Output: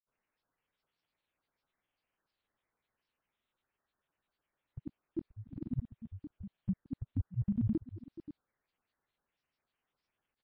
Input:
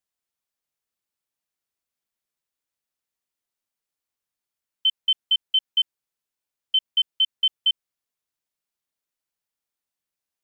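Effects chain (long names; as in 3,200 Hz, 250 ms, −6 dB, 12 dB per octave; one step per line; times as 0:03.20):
voice inversion scrambler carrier 2,900 Hz
single-tap delay 564 ms −13.5 dB
granular cloud 100 ms, grains 20 per second, spray 100 ms, pitch spread up and down by 12 semitones
level +8.5 dB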